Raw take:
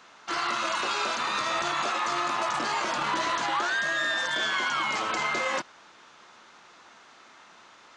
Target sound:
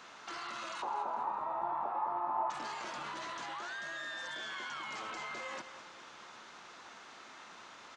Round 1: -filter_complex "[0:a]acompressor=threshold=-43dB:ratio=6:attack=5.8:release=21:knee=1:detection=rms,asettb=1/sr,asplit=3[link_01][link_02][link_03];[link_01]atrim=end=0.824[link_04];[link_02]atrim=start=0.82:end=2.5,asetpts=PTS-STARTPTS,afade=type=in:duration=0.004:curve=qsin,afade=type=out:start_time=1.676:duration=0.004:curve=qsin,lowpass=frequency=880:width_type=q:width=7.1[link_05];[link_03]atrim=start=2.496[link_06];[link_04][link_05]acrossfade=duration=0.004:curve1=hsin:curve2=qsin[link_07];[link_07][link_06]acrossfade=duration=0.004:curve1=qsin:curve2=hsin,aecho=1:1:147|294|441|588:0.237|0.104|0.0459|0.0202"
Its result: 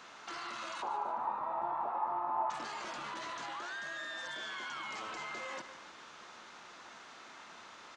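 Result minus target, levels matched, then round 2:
echo 59 ms early
-filter_complex "[0:a]acompressor=threshold=-43dB:ratio=6:attack=5.8:release=21:knee=1:detection=rms,asettb=1/sr,asplit=3[link_01][link_02][link_03];[link_01]atrim=end=0.824[link_04];[link_02]atrim=start=0.82:end=2.5,asetpts=PTS-STARTPTS,afade=type=in:duration=0.004:curve=qsin,afade=type=out:start_time=1.676:duration=0.004:curve=qsin,lowpass=frequency=880:width_type=q:width=7.1[link_05];[link_03]atrim=start=2.496[link_06];[link_04][link_05]acrossfade=duration=0.004:curve1=hsin:curve2=qsin[link_07];[link_07][link_06]acrossfade=duration=0.004:curve1=qsin:curve2=hsin,aecho=1:1:206|412|618|824:0.237|0.104|0.0459|0.0202"

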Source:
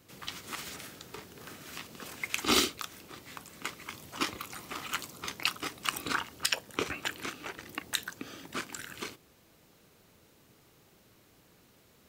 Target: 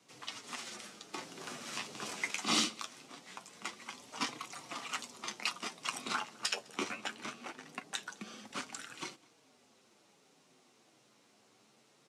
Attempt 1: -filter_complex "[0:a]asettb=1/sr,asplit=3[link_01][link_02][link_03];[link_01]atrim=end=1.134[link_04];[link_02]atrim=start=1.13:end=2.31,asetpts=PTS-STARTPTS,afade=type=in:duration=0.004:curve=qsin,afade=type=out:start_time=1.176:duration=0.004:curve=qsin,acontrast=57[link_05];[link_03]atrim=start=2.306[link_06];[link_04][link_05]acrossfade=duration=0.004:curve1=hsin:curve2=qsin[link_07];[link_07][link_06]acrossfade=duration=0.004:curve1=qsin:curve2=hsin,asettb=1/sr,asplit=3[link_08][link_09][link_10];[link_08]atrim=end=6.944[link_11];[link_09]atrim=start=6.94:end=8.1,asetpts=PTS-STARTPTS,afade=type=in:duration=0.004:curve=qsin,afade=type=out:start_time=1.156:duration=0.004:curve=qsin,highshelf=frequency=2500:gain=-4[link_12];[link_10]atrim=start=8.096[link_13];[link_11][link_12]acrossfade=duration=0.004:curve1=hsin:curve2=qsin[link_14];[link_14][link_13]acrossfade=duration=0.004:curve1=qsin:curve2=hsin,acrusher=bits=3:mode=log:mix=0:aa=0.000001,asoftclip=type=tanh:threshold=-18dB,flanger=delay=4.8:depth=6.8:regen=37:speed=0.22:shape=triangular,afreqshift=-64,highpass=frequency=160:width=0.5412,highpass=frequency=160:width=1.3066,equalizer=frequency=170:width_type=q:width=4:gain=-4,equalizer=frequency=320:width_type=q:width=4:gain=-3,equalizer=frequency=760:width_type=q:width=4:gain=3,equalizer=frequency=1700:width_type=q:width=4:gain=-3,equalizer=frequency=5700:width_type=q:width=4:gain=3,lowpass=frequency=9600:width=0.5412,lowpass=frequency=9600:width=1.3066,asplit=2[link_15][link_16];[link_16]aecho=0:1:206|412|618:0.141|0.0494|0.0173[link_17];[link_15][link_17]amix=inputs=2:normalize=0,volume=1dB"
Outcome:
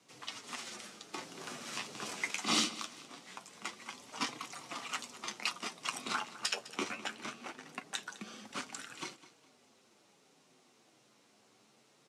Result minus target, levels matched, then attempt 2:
echo-to-direct +9.5 dB
-filter_complex "[0:a]asettb=1/sr,asplit=3[link_01][link_02][link_03];[link_01]atrim=end=1.134[link_04];[link_02]atrim=start=1.13:end=2.31,asetpts=PTS-STARTPTS,afade=type=in:duration=0.004:curve=qsin,afade=type=out:start_time=1.176:duration=0.004:curve=qsin,acontrast=57[link_05];[link_03]atrim=start=2.306[link_06];[link_04][link_05]acrossfade=duration=0.004:curve1=hsin:curve2=qsin[link_07];[link_07][link_06]acrossfade=duration=0.004:curve1=qsin:curve2=hsin,asettb=1/sr,asplit=3[link_08][link_09][link_10];[link_08]atrim=end=6.944[link_11];[link_09]atrim=start=6.94:end=8.1,asetpts=PTS-STARTPTS,afade=type=in:duration=0.004:curve=qsin,afade=type=out:start_time=1.156:duration=0.004:curve=qsin,highshelf=frequency=2500:gain=-4[link_12];[link_10]atrim=start=8.096[link_13];[link_11][link_12]acrossfade=duration=0.004:curve1=hsin:curve2=qsin[link_14];[link_14][link_13]acrossfade=duration=0.004:curve1=qsin:curve2=hsin,acrusher=bits=3:mode=log:mix=0:aa=0.000001,asoftclip=type=tanh:threshold=-18dB,flanger=delay=4.8:depth=6.8:regen=37:speed=0.22:shape=triangular,afreqshift=-64,highpass=frequency=160:width=0.5412,highpass=frequency=160:width=1.3066,equalizer=frequency=170:width_type=q:width=4:gain=-4,equalizer=frequency=320:width_type=q:width=4:gain=-3,equalizer=frequency=760:width_type=q:width=4:gain=3,equalizer=frequency=1700:width_type=q:width=4:gain=-3,equalizer=frequency=5700:width_type=q:width=4:gain=3,lowpass=frequency=9600:width=0.5412,lowpass=frequency=9600:width=1.3066,asplit=2[link_15][link_16];[link_16]aecho=0:1:206|412:0.0473|0.0166[link_17];[link_15][link_17]amix=inputs=2:normalize=0,volume=1dB"

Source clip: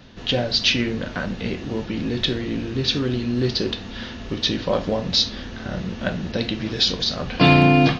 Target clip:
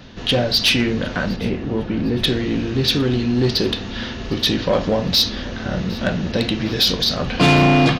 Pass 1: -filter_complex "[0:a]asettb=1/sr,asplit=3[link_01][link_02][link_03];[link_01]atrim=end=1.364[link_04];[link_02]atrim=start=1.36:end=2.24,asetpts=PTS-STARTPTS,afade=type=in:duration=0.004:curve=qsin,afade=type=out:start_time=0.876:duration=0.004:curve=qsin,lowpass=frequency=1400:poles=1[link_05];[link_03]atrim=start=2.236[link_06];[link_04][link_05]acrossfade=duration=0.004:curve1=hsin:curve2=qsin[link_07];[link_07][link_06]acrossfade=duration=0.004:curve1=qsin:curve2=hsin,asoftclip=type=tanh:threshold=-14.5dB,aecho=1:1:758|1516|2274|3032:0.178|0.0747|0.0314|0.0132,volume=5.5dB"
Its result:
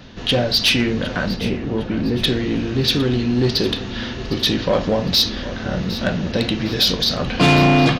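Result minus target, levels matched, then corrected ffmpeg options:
echo-to-direct +6.5 dB
-filter_complex "[0:a]asettb=1/sr,asplit=3[link_01][link_02][link_03];[link_01]atrim=end=1.364[link_04];[link_02]atrim=start=1.36:end=2.24,asetpts=PTS-STARTPTS,afade=type=in:duration=0.004:curve=qsin,afade=type=out:start_time=0.876:duration=0.004:curve=qsin,lowpass=frequency=1400:poles=1[link_05];[link_03]atrim=start=2.236[link_06];[link_04][link_05]acrossfade=duration=0.004:curve1=hsin:curve2=qsin[link_07];[link_07][link_06]acrossfade=duration=0.004:curve1=qsin:curve2=hsin,asoftclip=type=tanh:threshold=-14.5dB,aecho=1:1:758|1516|2274:0.0841|0.0353|0.0148,volume=5.5dB"

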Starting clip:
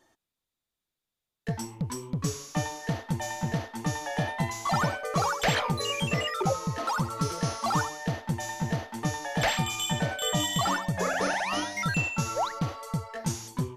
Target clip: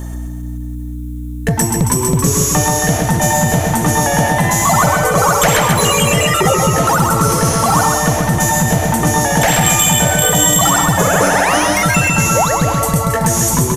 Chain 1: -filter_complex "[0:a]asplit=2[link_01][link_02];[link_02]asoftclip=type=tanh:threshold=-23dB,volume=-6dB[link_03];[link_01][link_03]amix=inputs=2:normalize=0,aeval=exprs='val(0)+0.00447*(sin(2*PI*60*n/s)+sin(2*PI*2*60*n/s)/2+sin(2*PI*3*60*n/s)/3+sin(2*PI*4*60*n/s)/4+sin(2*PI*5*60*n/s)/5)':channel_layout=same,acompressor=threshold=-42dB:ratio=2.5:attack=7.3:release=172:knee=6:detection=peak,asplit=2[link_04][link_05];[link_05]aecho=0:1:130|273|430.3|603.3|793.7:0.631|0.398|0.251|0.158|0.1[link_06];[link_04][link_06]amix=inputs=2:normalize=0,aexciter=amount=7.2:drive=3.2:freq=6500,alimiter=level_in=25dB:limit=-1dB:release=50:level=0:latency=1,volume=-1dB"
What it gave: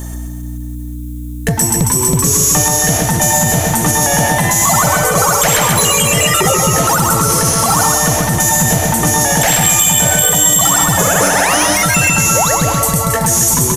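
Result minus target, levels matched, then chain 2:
8,000 Hz band +2.5 dB
-filter_complex "[0:a]asplit=2[link_01][link_02];[link_02]asoftclip=type=tanh:threshold=-23dB,volume=-6dB[link_03];[link_01][link_03]amix=inputs=2:normalize=0,aeval=exprs='val(0)+0.00447*(sin(2*PI*60*n/s)+sin(2*PI*2*60*n/s)/2+sin(2*PI*3*60*n/s)/3+sin(2*PI*4*60*n/s)/4+sin(2*PI*5*60*n/s)/5)':channel_layout=same,acompressor=threshold=-42dB:ratio=2.5:attack=7.3:release=172:knee=6:detection=peak,highshelf=frequency=3500:gain=-8.5,asplit=2[link_04][link_05];[link_05]aecho=0:1:130|273|430.3|603.3|793.7:0.631|0.398|0.251|0.158|0.1[link_06];[link_04][link_06]amix=inputs=2:normalize=0,aexciter=amount=7.2:drive=3.2:freq=6500,alimiter=level_in=25dB:limit=-1dB:release=50:level=0:latency=1,volume=-1dB"

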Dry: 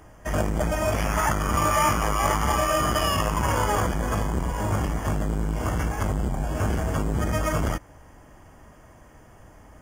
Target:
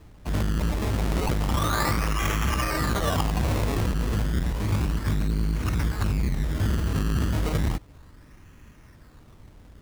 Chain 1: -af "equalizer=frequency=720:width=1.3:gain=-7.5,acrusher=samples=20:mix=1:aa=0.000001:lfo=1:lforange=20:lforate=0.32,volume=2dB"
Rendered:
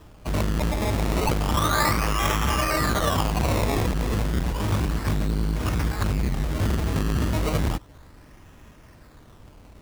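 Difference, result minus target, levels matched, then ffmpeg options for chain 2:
1,000 Hz band +2.5 dB
-af "equalizer=frequency=720:width=1.3:gain=-19,acrusher=samples=20:mix=1:aa=0.000001:lfo=1:lforange=20:lforate=0.32,volume=2dB"

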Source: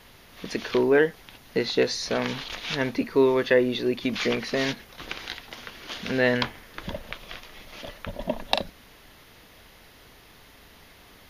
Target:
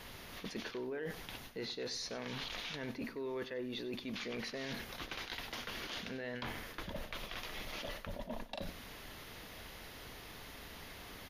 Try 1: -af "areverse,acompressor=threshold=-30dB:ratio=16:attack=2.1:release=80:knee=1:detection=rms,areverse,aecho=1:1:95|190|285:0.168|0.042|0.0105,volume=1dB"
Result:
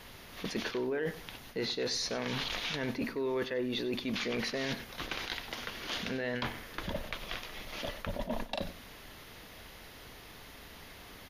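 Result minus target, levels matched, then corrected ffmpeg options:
downward compressor: peak gain reduction −7.5 dB
-af "areverse,acompressor=threshold=-38dB:ratio=16:attack=2.1:release=80:knee=1:detection=rms,areverse,aecho=1:1:95|190|285:0.168|0.042|0.0105,volume=1dB"

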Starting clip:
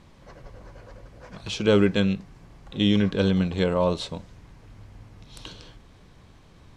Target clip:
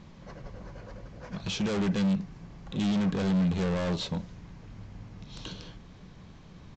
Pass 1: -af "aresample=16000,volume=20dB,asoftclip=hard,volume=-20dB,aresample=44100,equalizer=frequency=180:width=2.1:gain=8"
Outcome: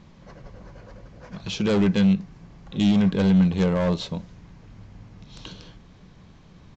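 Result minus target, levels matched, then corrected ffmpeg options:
gain into a clipping stage and back: distortion −6 dB
-af "aresample=16000,volume=30dB,asoftclip=hard,volume=-30dB,aresample=44100,equalizer=frequency=180:width=2.1:gain=8"

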